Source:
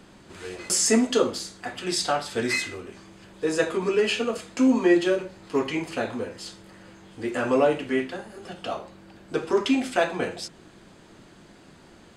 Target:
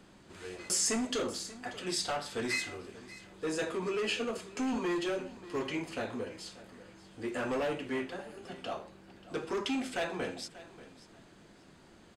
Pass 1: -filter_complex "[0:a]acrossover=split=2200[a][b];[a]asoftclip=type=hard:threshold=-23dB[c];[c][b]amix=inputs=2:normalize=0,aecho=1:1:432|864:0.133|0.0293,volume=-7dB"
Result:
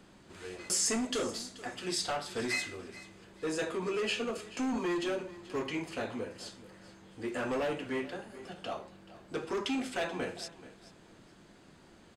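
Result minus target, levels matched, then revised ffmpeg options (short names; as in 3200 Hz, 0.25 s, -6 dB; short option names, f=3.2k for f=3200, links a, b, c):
echo 0.154 s early
-filter_complex "[0:a]acrossover=split=2200[a][b];[a]asoftclip=type=hard:threshold=-23dB[c];[c][b]amix=inputs=2:normalize=0,aecho=1:1:586|1172:0.133|0.0293,volume=-7dB"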